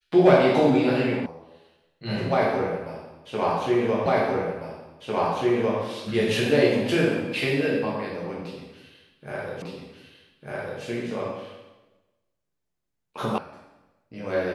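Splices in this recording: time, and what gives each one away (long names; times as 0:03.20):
0:01.26: cut off before it has died away
0:04.06: the same again, the last 1.75 s
0:09.62: the same again, the last 1.2 s
0:13.38: cut off before it has died away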